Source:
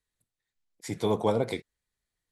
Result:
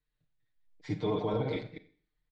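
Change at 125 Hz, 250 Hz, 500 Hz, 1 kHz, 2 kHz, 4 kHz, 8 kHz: -0.5 dB, -2.5 dB, -5.0 dB, -5.5 dB, -3.5 dB, -5.0 dB, under -20 dB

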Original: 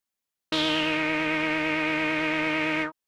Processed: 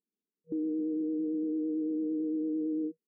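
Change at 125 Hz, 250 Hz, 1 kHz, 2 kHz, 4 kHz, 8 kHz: under -15 dB, -1.0 dB, under -40 dB, under -40 dB, under -40 dB, under -35 dB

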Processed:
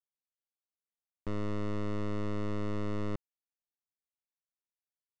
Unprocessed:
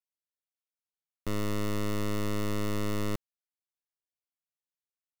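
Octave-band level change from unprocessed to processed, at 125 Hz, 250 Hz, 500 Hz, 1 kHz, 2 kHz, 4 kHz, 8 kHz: -3.0 dB, -3.0 dB, -3.0 dB, -4.5 dB, -7.0 dB, -11.0 dB, under -15 dB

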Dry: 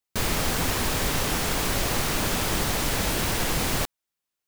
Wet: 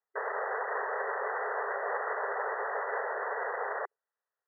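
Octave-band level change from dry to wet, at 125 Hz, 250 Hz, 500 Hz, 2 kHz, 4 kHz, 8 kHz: under -40 dB, under -25 dB, -2.5 dB, -4.0 dB, under -40 dB, under -40 dB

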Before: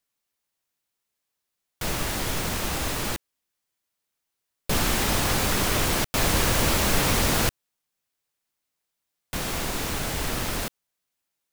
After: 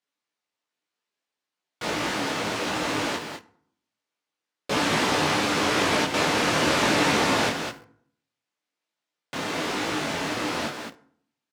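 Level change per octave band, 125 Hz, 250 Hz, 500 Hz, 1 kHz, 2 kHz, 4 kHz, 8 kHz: -5.5 dB, +3.0 dB, +3.5 dB, +4.0 dB, +3.5 dB, +1.5 dB, -5.0 dB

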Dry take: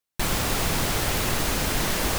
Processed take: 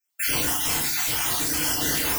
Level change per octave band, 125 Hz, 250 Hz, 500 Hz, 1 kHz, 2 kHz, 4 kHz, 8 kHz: -8.0 dB, -3.0 dB, -6.0 dB, -3.5 dB, 0.0 dB, +1.0 dB, +4.0 dB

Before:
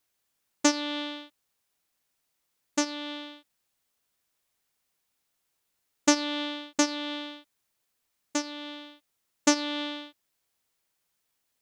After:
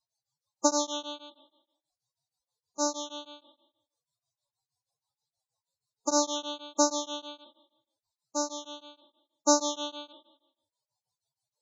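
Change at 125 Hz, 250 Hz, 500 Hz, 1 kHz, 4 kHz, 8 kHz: no reading, -4.5 dB, +3.0 dB, +3.0 dB, -2.5 dB, +2.0 dB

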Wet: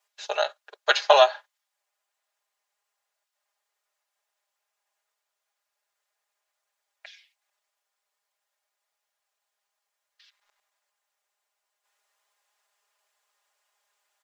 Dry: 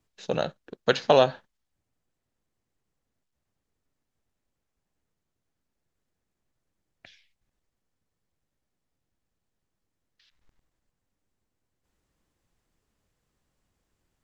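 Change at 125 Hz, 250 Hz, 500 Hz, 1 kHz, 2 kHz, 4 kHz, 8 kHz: under -40 dB, under -20 dB, +1.0 dB, +5.0 dB, +6.5 dB, +6.0 dB, no reading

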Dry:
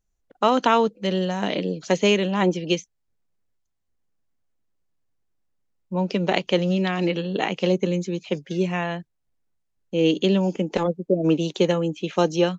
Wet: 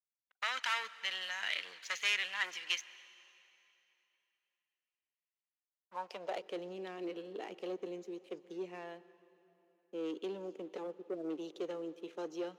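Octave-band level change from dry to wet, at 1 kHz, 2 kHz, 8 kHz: -18.5 dB, -7.5 dB, no reading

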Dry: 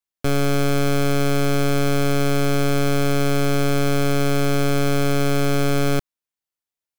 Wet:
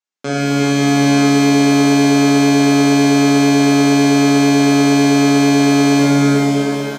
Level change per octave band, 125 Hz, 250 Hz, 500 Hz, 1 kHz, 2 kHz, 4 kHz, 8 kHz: +3.0 dB, +13.0 dB, +5.5 dB, +8.0 dB, +8.0 dB, +9.0 dB, +9.5 dB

